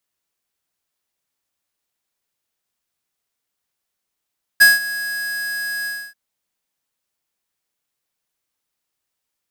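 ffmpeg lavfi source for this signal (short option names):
-f lavfi -i "aevalsrc='0.422*(2*lt(mod(1660*t,1),0.5)-1)':d=1.537:s=44100,afade=t=in:d=0.017,afade=t=out:st=0.017:d=0.173:silence=0.133,afade=t=out:st=1.26:d=0.277"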